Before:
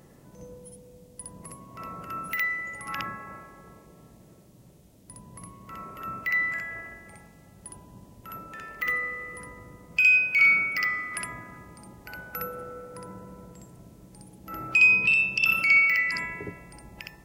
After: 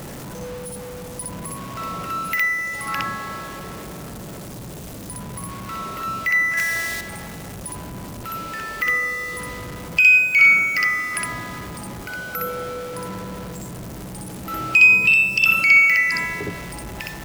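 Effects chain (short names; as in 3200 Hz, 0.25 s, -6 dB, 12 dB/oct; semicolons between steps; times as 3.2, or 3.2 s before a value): zero-crossing step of -36.5 dBFS; 6.57–7.01 high shelf 2100 Hz +10.5 dB; 12.03–12.47 notch comb 900 Hz; gain +6 dB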